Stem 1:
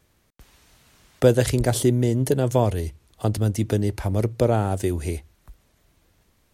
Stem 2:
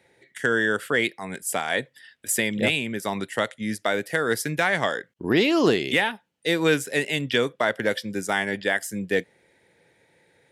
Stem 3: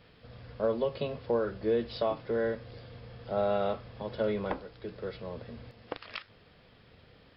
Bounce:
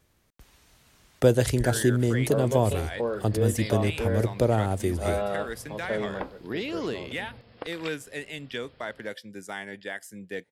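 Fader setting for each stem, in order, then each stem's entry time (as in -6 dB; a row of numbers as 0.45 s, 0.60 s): -3.0 dB, -12.0 dB, 0.0 dB; 0.00 s, 1.20 s, 1.70 s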